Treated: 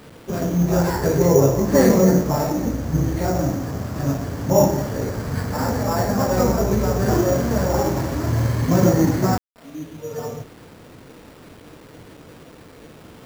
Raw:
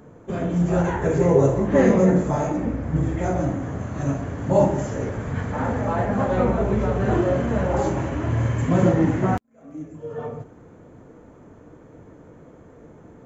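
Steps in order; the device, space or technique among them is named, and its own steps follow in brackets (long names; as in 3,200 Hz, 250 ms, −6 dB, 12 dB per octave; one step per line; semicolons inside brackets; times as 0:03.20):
early 8-bit sampler (sample-rate reduction 6,300 Hz, jitter 0%; bit reduction 8 bits)
level +2 dB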